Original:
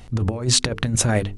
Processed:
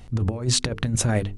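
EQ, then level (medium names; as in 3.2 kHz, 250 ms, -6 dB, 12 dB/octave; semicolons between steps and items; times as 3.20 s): bass shelf 340 Hz +3.5 dB; -4.5 dB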